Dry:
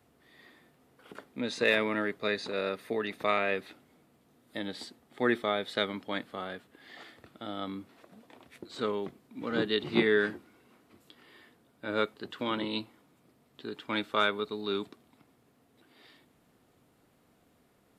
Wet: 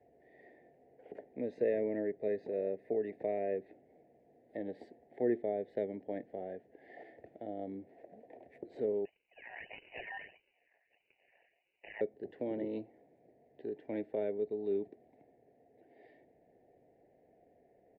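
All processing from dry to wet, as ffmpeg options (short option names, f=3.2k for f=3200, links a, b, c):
-filter_complex "[0:a]asettb=1/sr,asplit=3[a][b][c];[a]atrim=end=9.054[d];[b]atrim=start=9.05:end=12.01,asetpts=PTS-STARTPTS,afade=t=in:d=0.004:c=qsin,afade=t=out:st=2.956:d=0.004:c=qsin,aeval=exprs='val(0)*sin(2*PI*1600*n/s)':c=same,acrusher=samples=26:mix=1:aa=0.000001:lfo=1:lforange=26:lforate=1.6,lowpass=f=2.6k:t=q:w=0.5098,lowpass=f=2.6k:t=q:w=0.6013,lowpass=f=2.6k:t=q:w=0.9,lowpass=f=2.6k:t=q:w=2.563,afreqshift=-3000[e];[c]atrim=start=12.006[f];[d][e]acrossfade=d=0.004:c1=hsin:c2=qsin[g];[g][f]acrossfade=d=0.004:c1=qsin:c2=hsin,firequalizer=gain_entry='entry(230,0);entry(410,11);entry(710,13);entry(1200,-28);entry(1800,3);entry(3300,-16)':delay=0.05:min_phase=1,acrossover=split=390[h][i];[i]acompressor=threshold=-43dB:ratio=2[j];[h][j]amix=inputs=2:normalize=0,highshelf=f=5.7k:g=-9.5,volume=-6.5dB"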